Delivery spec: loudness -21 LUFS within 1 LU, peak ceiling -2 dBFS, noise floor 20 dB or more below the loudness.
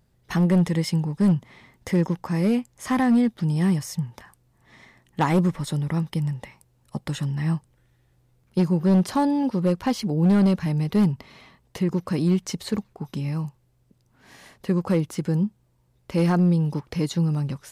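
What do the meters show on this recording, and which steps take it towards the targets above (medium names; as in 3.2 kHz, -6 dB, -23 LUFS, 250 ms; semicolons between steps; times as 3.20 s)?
clipped samples 1.4%; clipping level -14.0 dBFS; loudness -23.5 LUFS; peak level -14.0 dBFS; loudness target -21.0 LUFS
-> clip repair -14 dBFS; trim +2.5 dB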